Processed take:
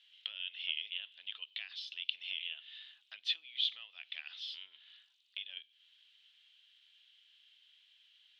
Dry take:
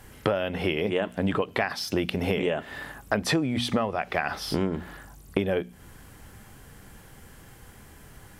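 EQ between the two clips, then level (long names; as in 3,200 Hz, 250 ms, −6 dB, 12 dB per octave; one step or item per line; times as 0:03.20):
flat-topped band-pass 3,300 Hz, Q 3.2
+1.0 dB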